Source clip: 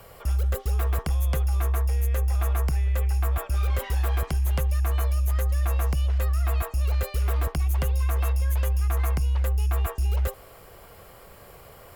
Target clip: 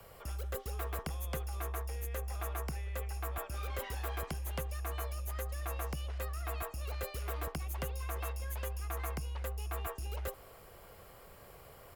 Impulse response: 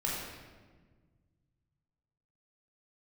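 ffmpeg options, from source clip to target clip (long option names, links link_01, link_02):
-filter_complex "[0:a]acrossover=split=160|1500|3000[link_01][link_02][link_03][link_04];[link_01]alimiter=level_in=5.5dB:limit=-24dB:level=0:latency=1,volume=-5.5dB[link_05];[link_02]aecho=1:1:612:0.0891[link_06];[link_05][link_06][link_03][link_04]amix=inputs=4:normalize=0,volume=-7dB"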